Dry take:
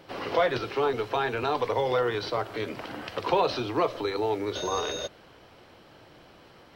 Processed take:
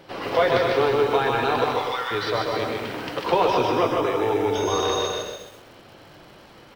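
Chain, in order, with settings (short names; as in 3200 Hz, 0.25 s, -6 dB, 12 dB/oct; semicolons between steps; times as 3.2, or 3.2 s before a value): 1.64–2.11 HPF 1100 Hz 24 dB/oct; flange 0.94 Hz, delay 5.1 ms, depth 3.4 ms, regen -68%; 3.37–4.72 Butterworth band-stop 4200 Hz, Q 4.1; bouncing-ball echo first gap 0.15 s, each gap 0.65×, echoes 5; lo-fi delay 0.129 s, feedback 35%, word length 9-bit, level -6 dB; gain +7.5 dB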